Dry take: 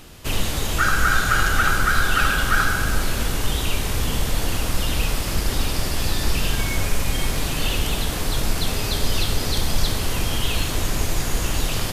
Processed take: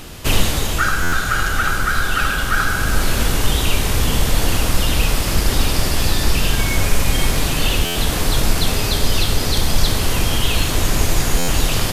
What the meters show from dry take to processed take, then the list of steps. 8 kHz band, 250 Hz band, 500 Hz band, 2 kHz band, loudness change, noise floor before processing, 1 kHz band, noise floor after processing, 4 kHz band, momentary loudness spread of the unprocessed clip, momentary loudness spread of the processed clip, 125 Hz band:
+5.0 dB, +5.0 dB, +5.0 dB, +2.0 dB, +4.0 dB, −26 dBFS, +2.0 dB, −21 dBFS, +5.0 dB, 6 LU, 1 LU, +5.0 dB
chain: speech leveller 0.5 s
buffer that repeats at 0:01.02/0:07.85/0:11.38, samples 512, times 8
level +4 dB

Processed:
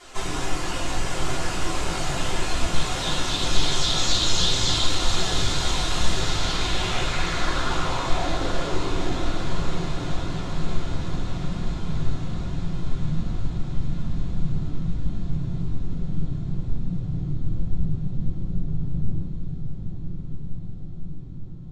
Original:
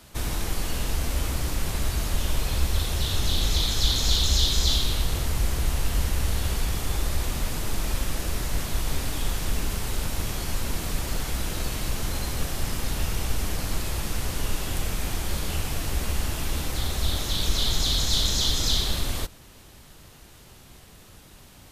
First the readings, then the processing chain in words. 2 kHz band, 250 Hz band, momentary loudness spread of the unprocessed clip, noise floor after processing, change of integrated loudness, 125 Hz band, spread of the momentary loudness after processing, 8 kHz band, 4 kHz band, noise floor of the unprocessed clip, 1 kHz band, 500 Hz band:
+3.5 dB, +5.0 dB, 8 LU, −31 dBFS, 0.0 dB, +1.5 dB, 11 LU, −2.0 dB, 0.0 dB, −50 dBFS, +6.0 dB, +4.0 dB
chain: bass and treble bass −14 dB, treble −10 dB
in parallel at +2 dB: downward compressor, threshold −43 dBFS, peak gain reduction 17 dB
on the sum: random phases in short frames
low-pass filter sweep 7,400 Hz → 170 Hz, 0:06.09–0:09.66
flanger 1.2 Hz, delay 2.6 ms, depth 5.8 ms, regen +54%
on a send: feedback delay with all-pass diffusion 918 ms, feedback 70%, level −6 dB
on the sum: rectangular room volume 150 cubic metres, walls furnished, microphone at 3.2 metres

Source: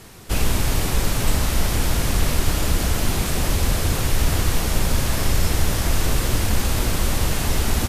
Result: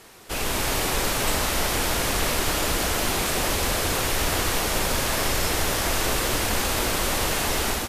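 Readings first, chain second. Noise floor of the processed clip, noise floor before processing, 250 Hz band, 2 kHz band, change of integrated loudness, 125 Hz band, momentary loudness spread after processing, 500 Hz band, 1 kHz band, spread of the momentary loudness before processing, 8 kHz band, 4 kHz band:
−28 dBFS, −24 dBFS, −3.5 dB, +2.5 dB, −1.0 dB, −9.5 dB, 0 LU, +1.5 dB, +2.5 dB, 1 LU, +1.0 dB, +2.0 dB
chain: bass and treble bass −13 dB, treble −2 dB
automatic gain control gain up to 5 dB
level −2 dB

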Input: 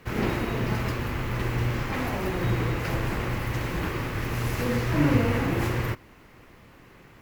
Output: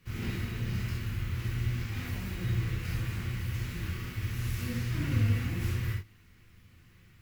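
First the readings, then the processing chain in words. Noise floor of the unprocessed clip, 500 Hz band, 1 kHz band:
−52 dBFS, −17.0 dB, −16.5 dB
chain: guitar amp tone stack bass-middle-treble 6-0-2
reverb whose tail is shaped and stops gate 100 ms flat, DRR −3 dB
level +5 dB

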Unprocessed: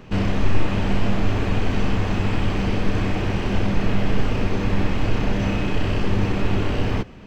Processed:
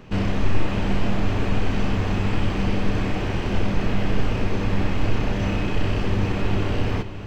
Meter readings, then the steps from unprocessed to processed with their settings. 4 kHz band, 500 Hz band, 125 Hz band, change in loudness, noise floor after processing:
−1.5 dB, −1.5 dB, −1.0 dB, −1.5 dB, −29 dBFS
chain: feedback delay with all-pass diffusion 568 ms, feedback 48%, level −13 dB
level −1.5 dB

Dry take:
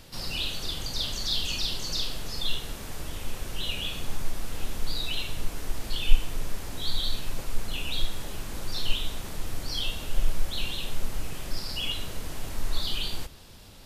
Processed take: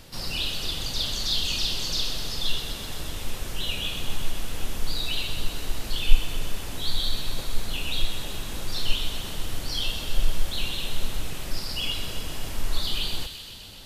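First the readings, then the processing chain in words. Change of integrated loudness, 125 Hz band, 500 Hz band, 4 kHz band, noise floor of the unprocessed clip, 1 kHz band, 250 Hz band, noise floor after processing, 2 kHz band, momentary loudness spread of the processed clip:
+3.0 dB, +2.0 dB, +2.0 dB, +3.0 dB, −42 dBFS, +2.0 dB, +2.0 dB, −38 dBFS, +3.0 dB, 8 LU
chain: delay with a high-pass on its return 127 ms, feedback 76%, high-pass 1,800 Hz, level −8 dB
level +2 dB

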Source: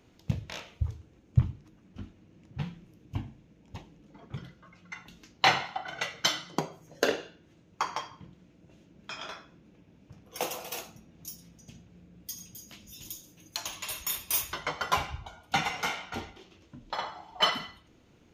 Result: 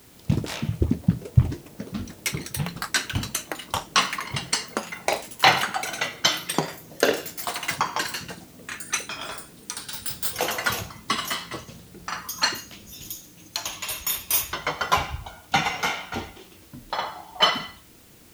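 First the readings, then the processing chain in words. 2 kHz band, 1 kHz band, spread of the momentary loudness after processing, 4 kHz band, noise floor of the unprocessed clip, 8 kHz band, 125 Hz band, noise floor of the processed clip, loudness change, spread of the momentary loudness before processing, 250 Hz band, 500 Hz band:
+8.5 dB, +7.0 dB, 15 LU, +8.0 dB, −61 dBFS, +9.5 dB, +7.0 dB, −50 dBFS, +6.5 dB, 20 LU, +10.0 dB, +7.0 dB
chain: delay with pitch and tempo change per echo 112 ms, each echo +6 semitones, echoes 3
bit-depth reduction 10 bits, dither triangular
level +6 dB

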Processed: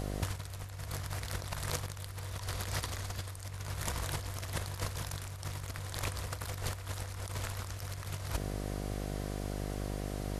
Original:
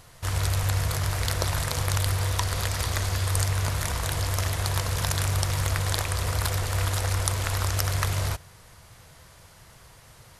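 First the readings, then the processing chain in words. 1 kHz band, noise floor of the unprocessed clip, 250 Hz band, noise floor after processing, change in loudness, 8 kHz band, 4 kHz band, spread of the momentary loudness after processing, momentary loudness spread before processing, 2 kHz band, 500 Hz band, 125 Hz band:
−11.0 dB, −52 dBFS, −3.5 dB, −44 dBFS, −12.5 dB, −12.0 dB, −12.0 dB, 5 LU, 2 LU, −11.5 dB, −8.0 dB, −12.5 dB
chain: hum with harmonics 50 Hz, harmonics 15, −42 dBFS −4 dB per octave
compressor whose output falls as the input rises −32 dBFS, ratio −0.5
level −3.5 dB

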